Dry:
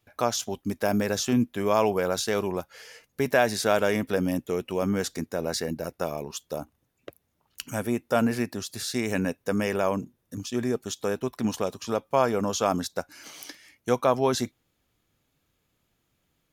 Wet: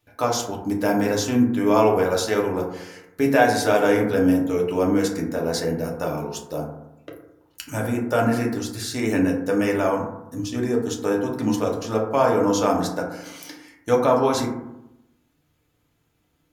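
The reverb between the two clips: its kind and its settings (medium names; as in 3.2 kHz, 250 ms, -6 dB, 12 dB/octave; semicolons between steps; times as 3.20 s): FDN reverb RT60 0.87 s, low-frequency decay 1.2×, high-frequency decay 0.3×, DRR -2 dB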